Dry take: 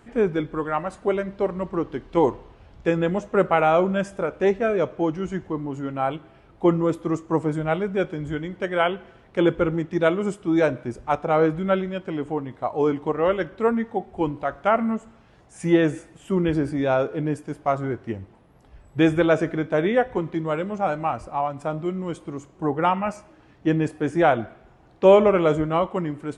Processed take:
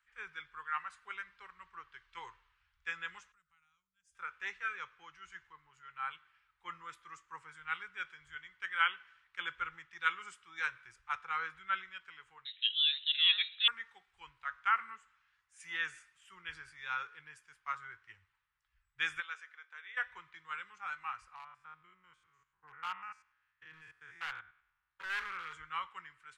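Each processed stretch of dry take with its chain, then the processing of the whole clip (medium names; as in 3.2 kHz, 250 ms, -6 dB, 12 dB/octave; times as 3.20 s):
3.32–4.15 s: FFT filter 140 Hz 0 dB, 440 Hz -26 dB, 2.5 kHz -19 dB, 6.2 kHz -3 dB + compression 16:1, threshold -42 dBFS
12.45–13.68 s: peaking EQ 310 Hz -9.5 dB 0.88 oct + frequency inversion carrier 3.9 kHz
19.20–19.97 s: ladder high-pass 440 Hz, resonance 30% + dynamic bell 770 Hz, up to -6 dB, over -34 dBFS, Q 0.77
21.35–25.53 s: spectrogram pixelated in time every 100 ms + treble shelf 3.6 kHz -11 dB + hard clipper -17.5 dBFS
whole clip: inverse Chebyshev high-pass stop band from 690 Hz, stop band 40 dB; tilt EQ -3 dB/octave; three bands expanded up and down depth 40%; trim -2.5 dB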